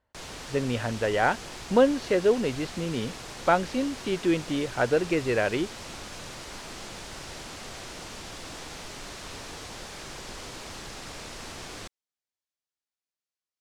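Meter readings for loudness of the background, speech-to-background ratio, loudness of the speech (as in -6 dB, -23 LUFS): -39.5 LUFS, 13.0 dB, -26.5 LUFS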